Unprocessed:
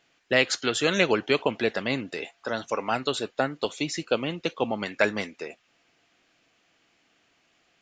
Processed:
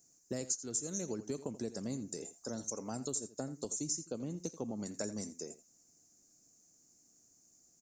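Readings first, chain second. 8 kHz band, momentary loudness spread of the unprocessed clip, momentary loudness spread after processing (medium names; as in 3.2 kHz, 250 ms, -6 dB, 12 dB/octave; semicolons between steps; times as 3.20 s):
+1.5 dB, 10 LU, 7 LU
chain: FFT filter 230 Hz 0 dB, 3.2 kHz -28 dB, 6.3 kHz +15 dB; compression 4:1, threshold -34 dBFS, peak gain reduction 16.5 dB; delay 84 ms -15 dB; trim -2 dB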